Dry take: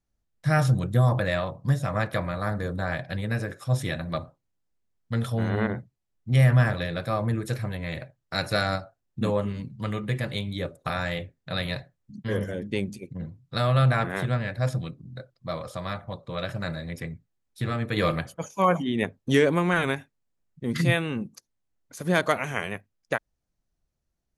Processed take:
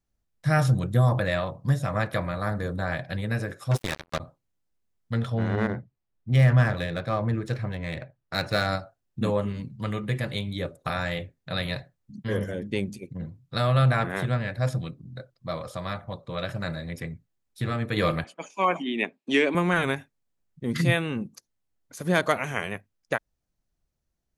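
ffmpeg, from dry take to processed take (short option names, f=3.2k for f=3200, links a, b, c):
-filter_complex "[0:a]asettb=1/sr,asplit=3[a][b][c];[a]atrim=end=3.714[d];[b]atrim=start=3.71:end=4.2,asetpts=PTS-STARTPTS,afade=t=in:d=0.004:c=qsin,afade=t=out:st=0.486:d=0.004:c=qsin,acrusher=bits=3:mix=0:aa=0.5[e];[c]atrim=start=4.196[f];[d][e]acrossfade=d=0.004:c1=hsin:c2=qsin[g];[g][f]acrossfade=d=0.004:c1=qsin:c2=hsin,asettb=1/sr,asplit=3[h][i][j];[h]atrim=end=5.174[k];[i]atrim=start=5.17:end=8.67,asetpts=PTS-STARTPTS,afade=t=in:d=0.004:c=qsin,afade=t=out:st=3.496:d=0.004:c=qsin,adynamicsmooth=sensitivity=7:basefreq=3.9k[l];[j]atrim=start=8.666[m];[k][l]acrossfade=d=0.004:c1=hsin:c2=qsin[n];[n][m]acrossfade=d=0.004:c1=qsin:c2=hsin,asettb=1/sr,asplit=3[o][p][q];[o]atrim=end=18.244[r];[p]atrim=start=18.24:end=19.55,asetpts=PTS-STARTPTS,afade=t=in:d=0.004:c=qsin,afade=t=out:st=1.306:d=0.004:c=qsin,highpass=f=240:w=0.5412,highpass=f=240:w=1.3066,equalizer=f=500:t=q:w=4:g=-7,equalizer=f=1.4k:t=q:w=4:g=-4,equalizer=f=2.5k:t=q:w=4:g=9,equalizer=f=6.2k:t=q:w=4:g=-7,lowpass=f=8k:w=0.5412,lowpass=f=8k:w=1.3066[s];[q]atrim=start=19.546[t];[r][s]acrossfade=d=0.004:c1=hsin:c2=qsin[u];[u][t]acrossfade=d=0.004:c1=qsin:c2=hsin"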